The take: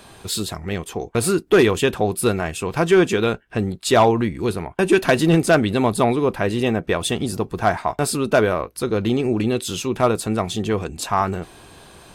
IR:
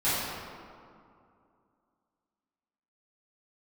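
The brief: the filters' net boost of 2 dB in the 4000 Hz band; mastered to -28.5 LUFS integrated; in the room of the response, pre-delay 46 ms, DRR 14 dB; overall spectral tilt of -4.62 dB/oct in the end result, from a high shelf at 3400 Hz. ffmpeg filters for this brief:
-filter_complex "[0:a]highshelf=f=3.4k:g=-8.5,equalizer=f=4k:t=o:g=8,asplit=2[a][b];[1:a]atrim=start_sample=2205,adelay=46[c];[b][c]afir=irnorm=-1:irlink=0,volume=-27dB[d];[a][d]amix=inputs=2:normalize=0,volume=-8.5dB"

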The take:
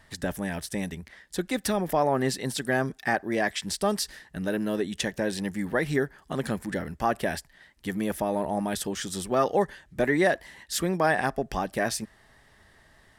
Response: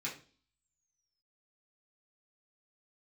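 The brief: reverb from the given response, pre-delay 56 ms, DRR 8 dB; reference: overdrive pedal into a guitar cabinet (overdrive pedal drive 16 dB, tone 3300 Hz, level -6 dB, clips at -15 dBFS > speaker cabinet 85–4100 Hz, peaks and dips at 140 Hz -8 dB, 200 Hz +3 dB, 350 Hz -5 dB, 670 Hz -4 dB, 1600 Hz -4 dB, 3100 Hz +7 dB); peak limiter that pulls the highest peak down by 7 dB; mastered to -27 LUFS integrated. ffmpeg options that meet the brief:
-filter_complex "[0:a]alimiter=limit=-18dB:level=0:latency=1,asplit=2[a][b];[1:a]atrim=start_sample=2205,adelay=56[c];[b][c]afir=irnorm=-1:irlink=0,volume=-10dB[d];[a][d]amix=inputs=2:normalize=0,asplit=2[e][f];[f]highpass=f=720:p=1,volume=16dB,asoftclip=type=tanh:threshold=-15dB[g];[e][g]amix=inputs=2:normalize=0,lowpass=f=3.3k:p=1,volume=-6dB,highpass=85,equalizer=f=140:t=q:w=4:g=-8,equalizer=f=200:t=q:w=4:g=3,equalizer=f=350:t=q:w=4:g=-5,equalizer=f=670:t=q:w=4:g=-4,equalizer=f=1.6k:t=q:w=4:g=-4,equalizer=f=3.1k:t=q:w=4:g=7,lowpass=f=4.1k:w=0.5412,lowpass=f=4.1k:w=1.3066,volume=1dB"

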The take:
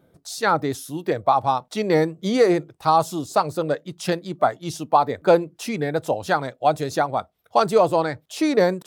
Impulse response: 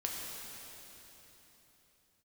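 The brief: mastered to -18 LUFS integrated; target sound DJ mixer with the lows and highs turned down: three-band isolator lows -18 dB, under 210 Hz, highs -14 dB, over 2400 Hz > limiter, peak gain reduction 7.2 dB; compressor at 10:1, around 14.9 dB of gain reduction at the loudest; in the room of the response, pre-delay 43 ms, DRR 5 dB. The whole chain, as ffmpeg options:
-filter_complex "[0:a]acompressor=threshold=-27dB:ratio=10,asplit=2[a][b];[1:a]atrim=start_sample=2205,adelay=43[c];[b][c]afir=irnorm=-1:irlink=0,volume=-8dB[d];[a][d]amix=inputs=2:normalize=0,acrossover=split=210 2400:gain=0.126 1 0.2[e][f][g];[e][f][g]amix=inputs=3:normalize=0,volume=16.5dB,alimiter=limit=-6dB:level=0:latency=1"

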